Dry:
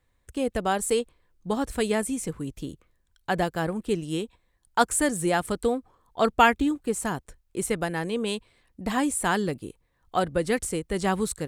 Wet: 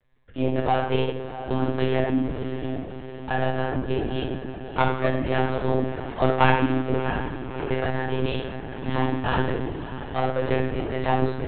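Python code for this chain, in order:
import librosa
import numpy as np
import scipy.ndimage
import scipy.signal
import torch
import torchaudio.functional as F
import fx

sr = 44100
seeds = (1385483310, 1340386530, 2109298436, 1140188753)

p1 = fx.diode_clip(x, sr, knee_db=-19.5)
p2 = fx.hum_notches(p1, sr, base_hz=60, count=6)
p3 = p2 + fx.echo_diffused(p2, sr, ms=646, feedback_pct=61, wet_db=-11.5, dry=0)
p4 = fx.room_shoebox(p3, sr, seeds[0], volume_m3=290.0, walls='mixed', distance_m=1.8)
p5 = fx.lpc_monotone(p4, sr, seeds[1], pitch_hz=130.0, order=16)
y = F.gain(torch.from_numpy(p5), -3.0).numpy()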